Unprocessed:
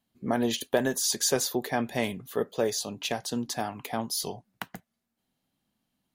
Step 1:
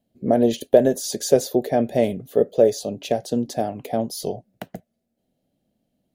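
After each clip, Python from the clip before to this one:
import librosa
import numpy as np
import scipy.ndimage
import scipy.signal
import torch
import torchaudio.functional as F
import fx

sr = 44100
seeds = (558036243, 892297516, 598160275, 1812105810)

y = fx.low_shelf_res(x, sr, hz=790.0, db=9.0, q=3.0)
y = y * librosa.db_to_amplitude(-2.0)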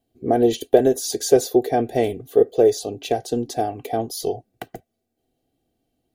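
y = x + 0.7 * np.pad(x, (int(2.6 * sr / 1000.0), 0))[:len(x)]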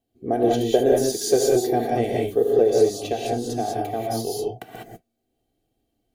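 y = fx.rev_gated(x, sr, seeds[0], gate_ms=220, shape='rising', drr_db=-2.5)
y = y * librosa.db_to_amplitude(-5.0)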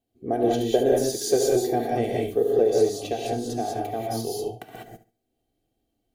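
y = fx.echo_feedback(x, sr, ms=70, feedback_pct=26, wet_db=-14.5)
y = y * librosa.db_to_amplitude(-2.5)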